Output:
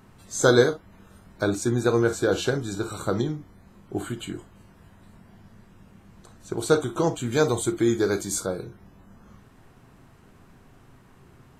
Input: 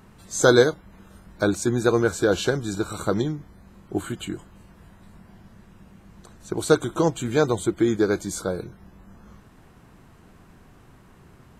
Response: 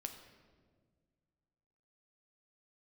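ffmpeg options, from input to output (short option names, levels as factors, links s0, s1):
-filter_complex "[0:a]asettb=1/sr,asplit=3[s0][s1][s2];[s0]atrim=end=7.324[s3];[s1]atrim=start=7.32:end=8.4,asetpts=PTS-STARTPTS,afade=t=in:d=0.004:c=qsin,afade=t=out:st=1.076:d=0.004:c=qsin,highshelf=f=3900:g=8[s4];[s2]atrim=start=8.396[s5];[s3][s4]acrossfade=d=0.004:c1=hsin:c2=qsin[s6];[s6][s5]acrossfade=d=0.004:c1=qsin:c2=hsin[s7];[1:a]atrim=start_sample=2205,atrim=end_sample=3087[s8];[s7][s8]afir=irnorm=-1:irlink=0,volume=1.19"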